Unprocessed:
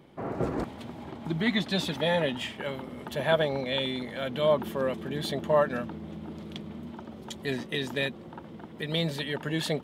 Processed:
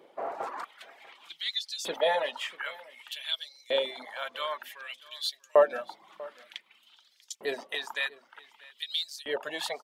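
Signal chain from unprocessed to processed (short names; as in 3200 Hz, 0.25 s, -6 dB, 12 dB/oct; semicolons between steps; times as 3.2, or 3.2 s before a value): LFO high-pass saw up 0.54 Hz 450–6300 Hz; de-hum 52.01 Hz, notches 18; reverb removal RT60 0.64 s; on a send: echo 0.642 s -21.5 dB; on the sum: gain -1 dB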